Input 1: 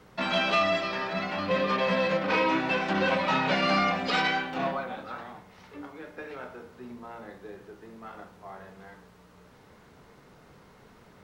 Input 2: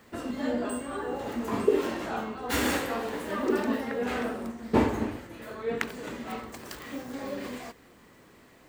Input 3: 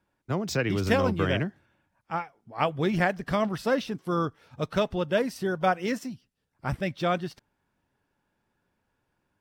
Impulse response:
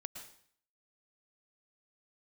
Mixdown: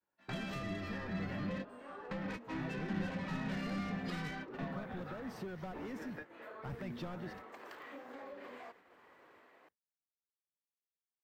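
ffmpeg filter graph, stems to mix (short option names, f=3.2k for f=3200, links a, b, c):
-filter_complex "[0:a]equalizer=f=1.8k:t=o:w=0.3:g=10,asoftclip=type=tanh:threshold=-23dB,volume=-1.5dB[a];[1:a]bass=f=250:g=-13,treble=f=4k:g=-8,adelay=1000,volume=-13.5dB[b];[2:a]volume=-4dB,asplit=2[c][d];[d]apad=whole_len=495506[e];[a][e]sidechaingate=range=-29dB:threshold=-51dB:ratio=16:detection=peak[f];[b][c]amix=inputs=2:normalize=0,asplit=2[g][h];[h]highpass=f=720:p=1,volume=24dB,asoftclip=type=tanh:threshold=-20dB[i];[g][i]amix=inputs=2:normalize=0,lowpass=f=1.3k:p=1,volume=-6dB,acompressor=threshold=-53dB:ratio=1.5,volume=0dB[j];[f][j]amix=inputs=2:normalize=0,agate=range=-33dB:threshold=-54dB:ratio=3:detection=peak,equalizer=f=14k:w=3.8:g=12.5,acrossover=split=250[k][l];[l]acompressor=threshold=-47dB:ratio=4[m];[k][m]amix=inputs=2:normalize=0"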